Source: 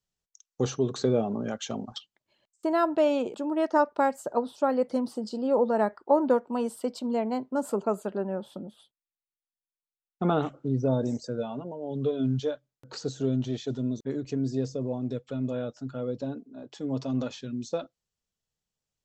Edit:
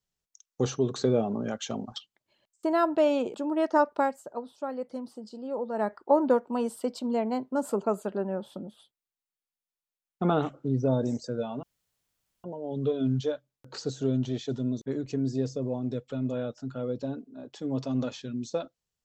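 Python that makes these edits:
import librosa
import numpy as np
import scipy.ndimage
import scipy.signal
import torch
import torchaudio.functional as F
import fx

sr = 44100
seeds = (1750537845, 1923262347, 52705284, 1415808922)

y = fx.edit(x, sr, fx.fade_down_up(start_s=3.96, length_s=2.0, db=-9.0, fade_s=0.27),
    fx.insert_room_tone(at_s=11.63, length_s=0.81), tone=tone)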